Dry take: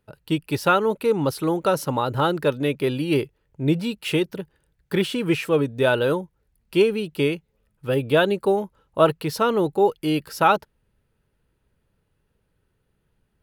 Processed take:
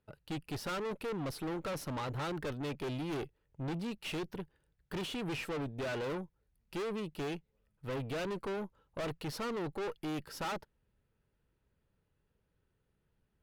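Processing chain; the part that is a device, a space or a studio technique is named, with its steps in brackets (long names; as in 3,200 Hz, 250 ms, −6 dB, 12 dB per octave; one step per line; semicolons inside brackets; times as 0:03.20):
tube preamp driven hard (tube saturation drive 30 dB, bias 0.6; high-shelf EQ 6,800 Hz −6.5 dB)
level −5 dB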